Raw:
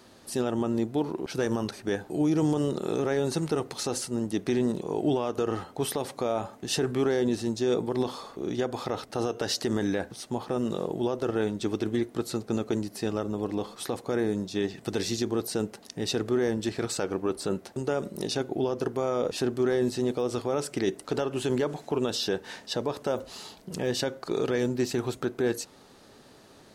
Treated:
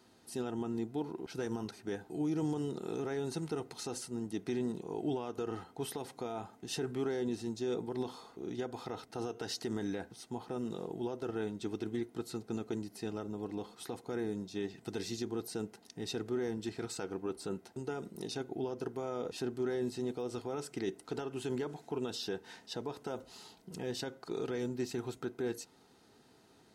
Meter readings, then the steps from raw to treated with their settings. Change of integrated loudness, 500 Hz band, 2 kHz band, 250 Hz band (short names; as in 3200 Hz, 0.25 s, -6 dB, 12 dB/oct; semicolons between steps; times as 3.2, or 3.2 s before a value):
-9.5 dB, -10.0 dB, -10.5 dB, -9.0 dB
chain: notch comb 570 Hz; gain -9 dB